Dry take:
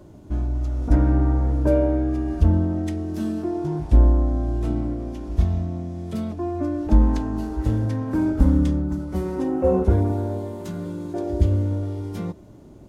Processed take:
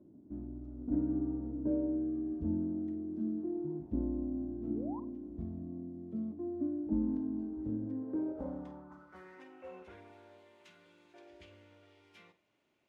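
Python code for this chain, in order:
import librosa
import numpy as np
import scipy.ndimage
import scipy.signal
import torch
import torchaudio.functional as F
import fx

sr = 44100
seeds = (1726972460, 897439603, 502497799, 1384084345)

y = fx.filter_sweep_bandpass(x, sr, from_hz=260.0, to_hz=2500.0, start_s=7.82, end_s=9.53, q=2.8)
y = fx.spec_paint(y, sr, seeds[0], shape='rise', start_s=4.6, length_s=0.4, low_hz=210.0, high_hz=1100.0, level_db=-41.0)
y = fx.room_flutter(y, sr, wall_m=8.4, rt60_s=0.24)
y = y * librosa.db_to_amplitude(-6.5)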